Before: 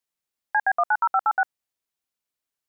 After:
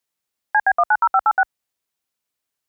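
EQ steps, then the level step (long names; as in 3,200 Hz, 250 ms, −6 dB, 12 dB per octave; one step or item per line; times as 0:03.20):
high-pass filter 40 Hz 12 dB per octave
+5.0 dB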